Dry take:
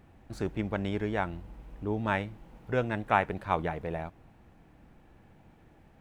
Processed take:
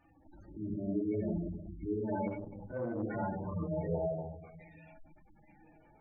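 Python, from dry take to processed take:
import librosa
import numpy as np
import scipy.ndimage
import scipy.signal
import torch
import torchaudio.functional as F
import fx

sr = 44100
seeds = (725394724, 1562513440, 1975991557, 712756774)

y = fx.hpss_only(x, sr, part='harmonic')
y = fx.high_shelf(y, sr, hz=6800.0, db=10.0)
y = fx.level_steps(y, sr, step_db=14)
y = 10.0 ** (-32.5 / 20.0) * (np.abs((y / 10.0 ** (-32.5 / 20.0) + 3.0) % 4.0 - 2.0) - 1.0)
y = fx.bass_treble(y, sr, bass_db=-9, treble_db=-2)
y = fx.hum_notches(y, sr, base_hz=60, count=2)
y = fx.echo_wet_highpass(y, sr, ms=860, feedback_pct=30, hz=2300.0, wet_db=-5)
y = fx.room_shoebox(y, sr, seeds[0], volume_m3=650.0, walls='mixed', distance_m=2.6)
y = fx.spec_gate(y, sr, threshold_db=-15, keep='strong')
y = fx.transformer_sat(y, sr, knee_hz=340.0, at=(2.27, 3.03))
y = y * 10.0 ** (5.5 / 20.0)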